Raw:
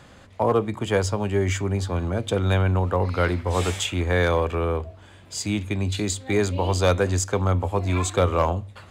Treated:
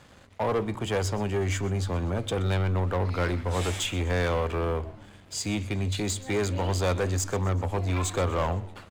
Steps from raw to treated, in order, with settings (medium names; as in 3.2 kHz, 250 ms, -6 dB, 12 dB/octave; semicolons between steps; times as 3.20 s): waveshaping leveller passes 2; frequency-shifting echo 125 ms, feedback 52%, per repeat -95 Hz, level -18.5 dB; trim -9 dB